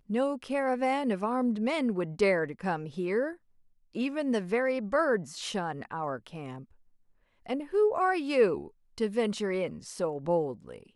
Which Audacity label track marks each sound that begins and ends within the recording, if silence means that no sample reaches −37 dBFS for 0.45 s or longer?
3.950000	6.620000	sound